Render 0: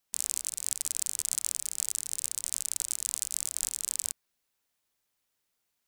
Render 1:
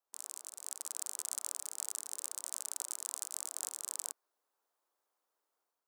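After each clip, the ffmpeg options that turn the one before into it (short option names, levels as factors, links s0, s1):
-af "highpass=f=340:w=0.5412,highpass=f=340:w=1.3066,highshelf=f=1600:t=q:w=1.5:g=-10.5,dynaudnorm=f=510:g=3:m=2,volume=0.668"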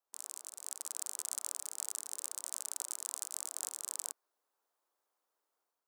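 -af anull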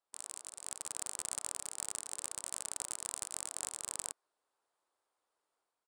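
-af "aresample=22050,aresample=44100,aeval=exprs='0.168*(cos(1*acos(clip(val(0)/0.168,-1,1)))-cos(1*PI/2))+0.0119*(cos(4*acos(clip(val(0)/0.168,-1,1)))-cos(4*PI/2))':c=same,equalizer=f=6100:w=3.6:g=-6.5,volume=1.19"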